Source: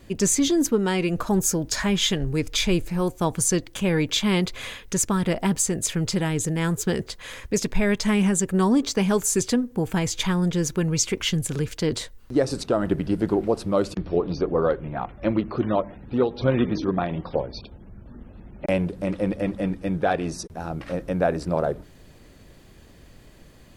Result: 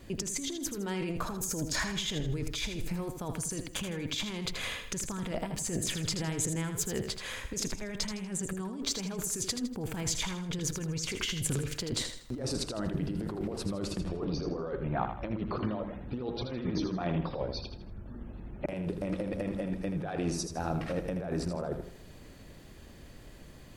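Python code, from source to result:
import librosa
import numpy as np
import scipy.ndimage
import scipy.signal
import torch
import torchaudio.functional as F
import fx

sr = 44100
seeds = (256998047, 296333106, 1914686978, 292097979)

y = fx.over_compress(x, sr, threshold_db=-28.0, ratio=-1.0)
y = fx.echo_feedback(y, sr, ms=80, feedback_pct=37, wet_db=-8.0)
y = F.gain(torch.from_numpy(y), -6.5).numpy()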